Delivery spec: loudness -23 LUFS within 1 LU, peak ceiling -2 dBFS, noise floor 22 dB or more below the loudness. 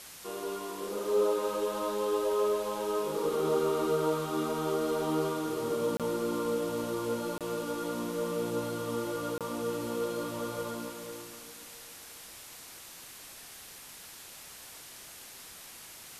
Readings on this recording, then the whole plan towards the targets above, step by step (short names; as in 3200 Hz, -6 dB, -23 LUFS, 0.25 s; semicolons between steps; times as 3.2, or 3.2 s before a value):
dropouts 3; longest dropout 27 ms; noise floor -49 dBFS; noise floor target -54 dBFS; loudness -32.0 LUFS; peak -17.0 dBFS; loudness target -23.0 LUFS
-> interpolate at 5.97/7.38/9.38, 27 ms; noise print and reduce 6 dB; gain +9 dB